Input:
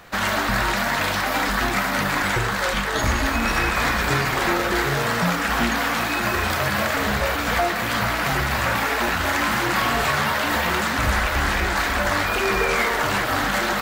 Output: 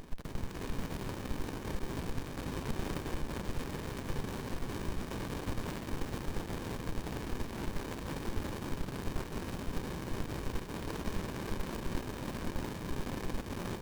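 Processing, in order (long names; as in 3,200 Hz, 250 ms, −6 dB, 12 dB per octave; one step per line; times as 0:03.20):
ceiling on every frequency bin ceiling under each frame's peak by 22 dB
high-pass filter 1,100 Hz 6 dB per octave
parametric band 2,800 Hz −14 dB 0.54 octaves
brickwall limiter −15.5 dBFS, peak gain reduction 7.5 dB
gate pattern "xxxx.xxx.xxxxxx." 172 BPM −12 dB
hard clipping −23.5 dBFS, distortion −13 dB
on a send: multi-tap delay 128/250/282/500 ms −17.5/−19.5/−17.5/−12.5 dB
on the sum: windowed peak hold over 65 samples
level +3 dB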